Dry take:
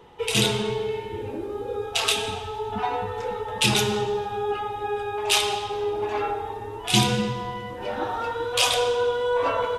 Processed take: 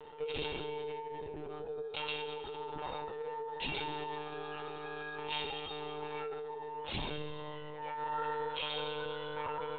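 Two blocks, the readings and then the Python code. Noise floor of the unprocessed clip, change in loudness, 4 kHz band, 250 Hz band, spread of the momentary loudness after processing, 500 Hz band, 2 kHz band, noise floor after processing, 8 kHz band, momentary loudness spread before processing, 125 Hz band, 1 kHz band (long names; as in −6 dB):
−35 dBFS, −14.5 dB, −16.0 dB, −17.0 dB, 6 LU, −14.0 dB, −13.5 dB, −44 dBFS, below −40 dB, 11 LU, −18.0 dB, −12.5 dB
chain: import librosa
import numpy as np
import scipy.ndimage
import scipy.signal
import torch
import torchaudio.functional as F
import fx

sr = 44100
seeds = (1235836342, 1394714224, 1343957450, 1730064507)

y = fx.comb_fb(x, sr, f0_hz=460.0, decay_s=0.31, harmonics='all', damping=0.0, mix_pct=90)
y = fx.lpc_monotone(y, sr, seeds[0], pitch_hz=150.0, order=16)
y = fx.env_flatten(y, sr, amount_pct=50)
y = F.gain(torch.from_numpy(y), -3.0).numpy()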